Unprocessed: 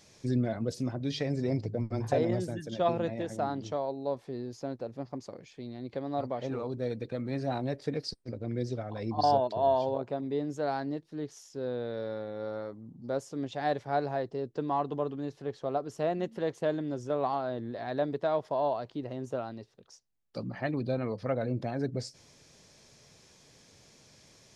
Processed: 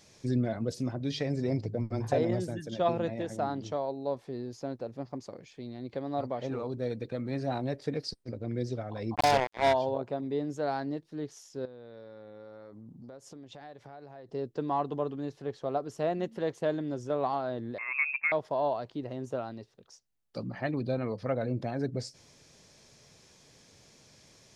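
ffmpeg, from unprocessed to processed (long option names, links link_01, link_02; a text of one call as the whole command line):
ffmpeg -i in.wav -filter_complex "[0:a]asplit=3[link_01][link_02][link_03];[link_01]afade=type=out:start_time=9.14:duration=0.02[link_04];[link_02]acrusher=bits=3:mix=0:aa=0.5,afade=type=in:start_time=9.14:duration=0.02,afade=type=out:start_time=9.72:duration=0.02[link_05];[link_03]afade=type=in:start_time=9.72:duration=0.02[link_06];[link_04][link_05][link_06]amix=inputs=3:normalize=0,asettb=1/sr,asplit=3[link_07][link_08][link_09];[link_07]atrim=end=11.654[link_10];[link_08]atrim=start=11.65:end=14.29,asetpts=PTS-STARTPTS,afade=type=in:duration=0.004:curve=qsin,afade=type=out:start_time=2.636:duration=0.004:curve=qsin,acompressor=threshold=-43dB:ratio=16:attack=3.2:release=140:knee=1:detection=peak[link_11];[link_09]atrim=start=14.286[link_12];[link_10][link_11]acrossfade=duration=0.004:curve1=hsin:curve2=qsin[link_13];[link_13][link_12]acrossfade=duration=0.004:curve1=qsin:curve2=hsin,asettb=1/sr,asplit=3[link_14][link_15][link_16];[link_14]atrim=end=17.784[link_17];[link_15]atrim=start=17.78:end=18.32,asetpts=PTS-STARTPTS,afade=type=in:duration=0.004:curve=qsin,afade=type=out:start_time=0.536:duration=0.004:curve=qsin,lowpass=frequency=2400:width_type=q:width=0.5098,lowpass=frequency=2400:width_type=q:width=0.6013,lowpass=frequency=2400:width_type=q:width=0.9,lowpass=frequency=2400:width_type=q:width=2.563,afreqshift=-2800[link_18];[link_16]atrim=start=18.316[link_19];[link_17][link_18]acrossfade=duration=0.004:curve1=hsin:curve2=qsin[link_20];[link_20][link_19]acrossfade=duration=0.004:curve1=qsin:curve2=hsin" out.wav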